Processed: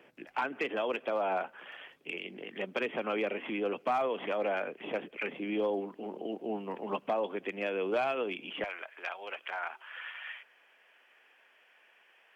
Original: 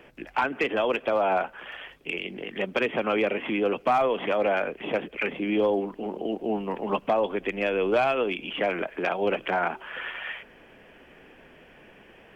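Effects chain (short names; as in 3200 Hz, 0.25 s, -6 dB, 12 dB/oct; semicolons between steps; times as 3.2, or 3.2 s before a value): HPF 170 Hz 12 dB/oct, from 8.64 s 1000 Hz; gain -7.5 dB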